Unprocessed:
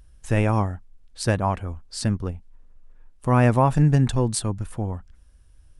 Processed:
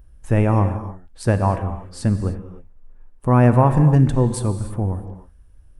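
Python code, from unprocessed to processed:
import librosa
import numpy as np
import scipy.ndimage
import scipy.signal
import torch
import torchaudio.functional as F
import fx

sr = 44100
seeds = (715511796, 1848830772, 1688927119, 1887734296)

y = fx.peak_eq(x, sr, hz=5000.0, db=-11.5, octaves=2.6)
y = fx.rev_gated(y, sr, seeds[0], gate_ms=330, shape='flat', drr_db=8.5)
y = y * 10.0 ** (4.0 / 20.0)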